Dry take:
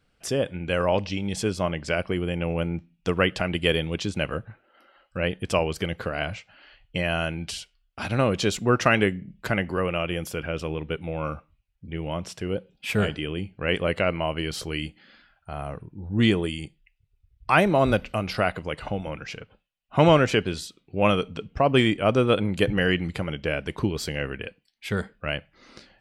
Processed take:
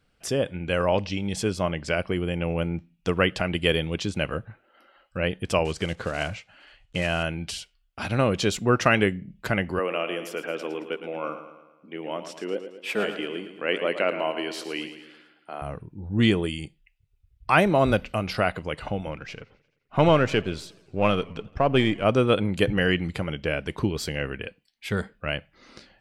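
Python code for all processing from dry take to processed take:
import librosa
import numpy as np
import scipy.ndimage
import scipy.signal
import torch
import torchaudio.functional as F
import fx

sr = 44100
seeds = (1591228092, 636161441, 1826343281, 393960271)

y = fx.chain(x, sr, fx.block_float(bits=5),
    fx.lowpass(hz=9000.0, slope=24), at=(5.65, 7.25))
y = fx.chain(y, sr, fx.highpass(hz=250.0, slope=24),
    fx.high_shelf(hz=4900.0, db=-6.0),
    fx.echo_feedback(ms=111, feedback_pct=51, wet_db=-10.5), at=(9.79, 15.62))
y = fx.chain(y, sr, fx.halfwave_gain(db=-3.0),
    fx.high_shelf(hz=5500.0, db=-7.5),
    fx.echo_warbled(ms=87, feedback_pct=62, rate_hz=2.8, cents=144, wet_db=-24), at=(19.11, 22.05))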